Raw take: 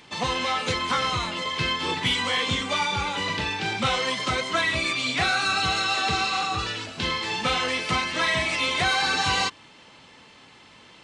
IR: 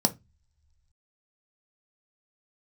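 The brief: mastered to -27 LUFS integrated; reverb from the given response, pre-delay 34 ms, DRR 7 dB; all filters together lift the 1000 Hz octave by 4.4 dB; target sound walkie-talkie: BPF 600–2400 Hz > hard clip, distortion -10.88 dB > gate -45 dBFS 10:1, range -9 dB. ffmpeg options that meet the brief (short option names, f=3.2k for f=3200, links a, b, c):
-filter_complex "[0:a]equalizer=f=1k:t=o:g=6.5,asplit=2[a][b];[1:a]atrim=start_sample=2205,adelay=34[c];[b][c]afir=irnorm=-1:irlink=0,volume=-17dB[d];[a][d]amix=inputs=2:normalize=0,highpass=600,lowpass=2.4k,asoftclip=type=hard:threshold=-21.5dB,agate=range=-9dB:threshold=-45dB:ratio=10,volume=-2dB"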